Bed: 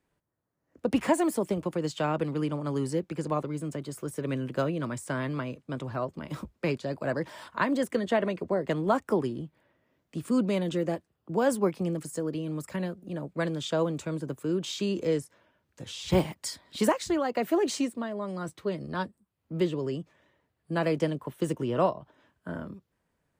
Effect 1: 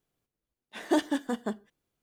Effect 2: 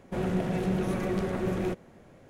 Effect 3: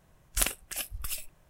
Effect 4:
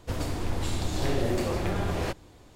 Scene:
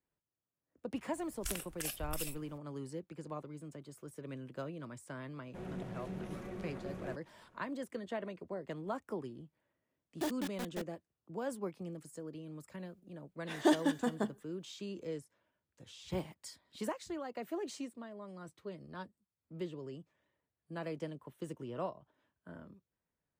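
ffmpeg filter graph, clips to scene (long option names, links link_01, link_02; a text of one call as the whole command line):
ffmpeg -i bed.wav -i cue0.wav -i cue1.wav -i cue2.wav -filter_complex "[1:a]asplit=2[link_01][link_02];[0:a]volume=-14dB[link_03];[3:a]acompressor=threshold=-33dB:ratio=6:attack=3.2:release=140:knee=1:detection=peak[link_04];[2:a]aresample=32000,aresample=44100[link_05];[link_01]acrusher=bits=4:mix=0:aa=0.000001[link_06];[link_04]atrim=end=1.49,asetpts=PTS-STARTPTS,volume=-1.5dB,afade=type=in:duration=0.004:curve=hsin,afade=type=out:start_time=1.486:duration=0.004:curve=hsin,adelay=1090[link_07];[link_05]atrim=end=2.29,asetpts=PTS-STARTPTS,volume=-15dB,afade=type=in:duration=0.004:curve=hsin,afade=type=out:start_time=2.286:duration=0.004:curve=hsin,adelay=5420[link_08];[link_06]atrim=end=2.02,asetpts=PTS-STARTPTS,volume=-12dB,afade=type=in:duration=0.004:curve=hsin,afade=type=out:start_time=2.016:duration=0.004:curve=hsin,adelay=410130S[link_09];[link_02]atrim=end=2.02,asetpts=PTS-STARTPTS,volume=-2.5dB,afade=type=in:duration=0.004:curve=hsin,afade=type=out:start_time=2.016:duration=0.004:curve=hsin,adelay=12740[link_10];[link_03][link_07][link_08][link_09][link_10]amix=inputs=5:normalize=0" out.wav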